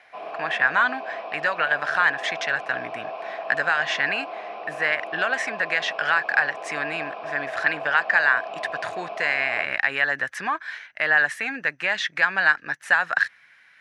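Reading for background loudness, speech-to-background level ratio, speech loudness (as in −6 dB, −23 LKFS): −34.5 LKFS, 11.5 dB, −23.0 LKFS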